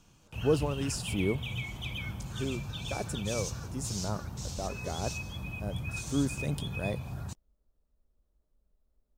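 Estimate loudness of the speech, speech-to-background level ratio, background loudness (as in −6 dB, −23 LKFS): −35.5 LKFS, 2.5 dB, −38.0 LKFS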